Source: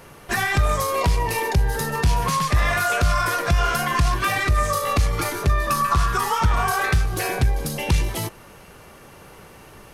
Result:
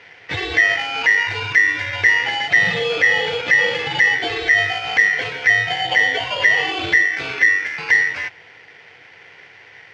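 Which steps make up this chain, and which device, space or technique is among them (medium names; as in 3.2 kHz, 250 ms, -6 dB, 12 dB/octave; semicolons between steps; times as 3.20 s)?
ring modulator pedal into a guitar cabinet (polarity switched at an audio rate 1.9 kHz; cabinet simulation 100–4200 Hz, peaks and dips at 100 Hz +7 dB, 230 Hz -5 dB, 460 Hz +6 dB, 1.2 kHz -8 dB, 2 kHz +6 dB, 3.9 kHz -5 dB)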